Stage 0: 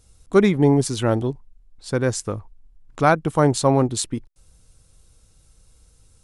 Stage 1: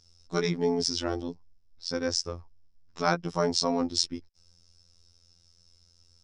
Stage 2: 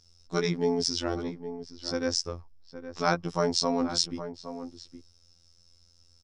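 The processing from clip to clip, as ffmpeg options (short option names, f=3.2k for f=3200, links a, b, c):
-af "afftfilt=real='hypot(re,im)*cos(PI*b)':imag='0':win_size=2048:overlap=0.75,lowpass=f=5.3k:t=q:w=10,volume=-6dB"
-filter_complex "[0:a]asplit=2[a][b];[b]adelay=816.3,volume=-11dB,highshelf=f=4k:g=-18.4[c];[a][c]amix=inputs=2:normalize=0"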